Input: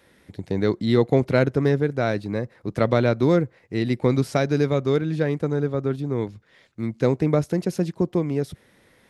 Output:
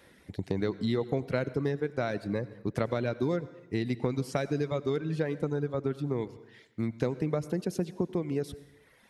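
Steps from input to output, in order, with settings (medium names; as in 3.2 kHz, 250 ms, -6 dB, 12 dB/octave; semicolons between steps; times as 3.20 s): reverb removal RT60 1 s; compression 4:1, threshold -27 dBFS, peak gain reduction 12 dB; reverberation RT60 1.0 s, pre-delay 78 ms, DRR 15.5 dB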